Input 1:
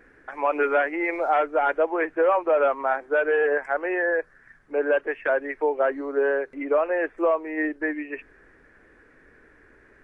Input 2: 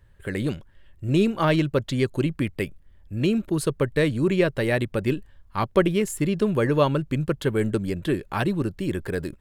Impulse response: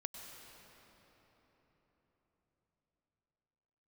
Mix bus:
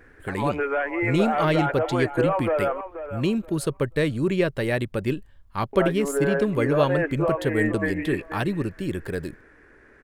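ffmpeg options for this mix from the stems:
-filter_complex "[0:a]alimiter=limit=-18dB:level=0:latency=1:release=161,volume=1.5dB,asplit=3[link_01][link_02][link_03];[link_01]atrim=end=2.81,asetpts=PTS-STARTPTS,afade=type=out:start_time=2.806:duration=0.004:curve=hsin[link_04];[link_02]atrim=start=2.81:end=5.73,asetpts=PTS-STARTPTS,volume=0[link_05];[link_03]atrim=start=5.73,asetpts=PTS-STARTPTS,afade=type=in:duration=0.004:curve=hsin[link_06];[link_04][link_05][link_06]concat=n=3:v=0:a=1,asplit=2[link_07][link_08];[link_08]volume=-11dB[link_09];[1:a]volume=-1.5dB[link_10];[link_09]aecho=0:1:481|962|1443:1|0.21|0.0441[link_11];[link_07][link_10][link_11]amix=inputs=3:normalize=0"

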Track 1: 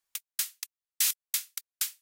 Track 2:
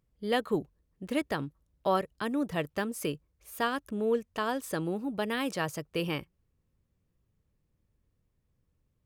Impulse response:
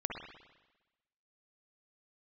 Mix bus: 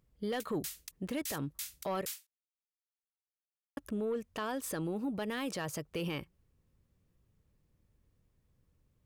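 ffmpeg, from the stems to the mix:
-filter_complex "[0:a]alimiter=limit=-24dB:level=0:latency=1:release=62,adelay=250,volume=-0.5dB[link_01];[1:a]asoftclip=type=tanh:threshold=-21dB,volume=2.5dB,asplit=3[link_02][link_03][link_04];[link_02]atrim=end=2.11,asetpts=PTS-STARTPTS,afade=type=out:start_time=2.106:duration=0.004:curve=hsin[link_05];[link_03]atrim=start=2.11:end=3.77,asetpts=PTS-STARTPTS,volume=0[link_06];[link_04]atrim=start=3.77,asetpts=PTS-STARTPTS,afade=type=in:duration=0.004:curve=hsin[link_07];[link_05][link_06][link_07]concat=n=3:v=0:a=1[link_08];[link_01][link_08]amix=inputs=2:normalize=0,alimiter=level_in=4.5dB:limit=-24dB:level=0:latency=1:release=101,volume=-4.5dB"

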